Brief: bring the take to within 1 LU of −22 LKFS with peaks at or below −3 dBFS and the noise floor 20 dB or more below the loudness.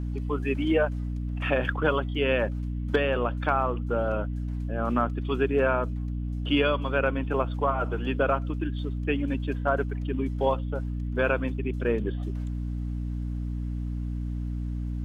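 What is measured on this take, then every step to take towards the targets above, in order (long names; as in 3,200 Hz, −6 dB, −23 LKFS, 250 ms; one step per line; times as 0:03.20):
crackle rate 21 per second; mains hum 60 Hz; hum harmonics up to 300 Hz; level of the hum −28 dBFS; integrated loudness −28.0 LKFS; sample peak −11.0 dBFS; target loudness −22.0 LKFS
→ click removal
hum removal 60 Hz, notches 5
level +6 dB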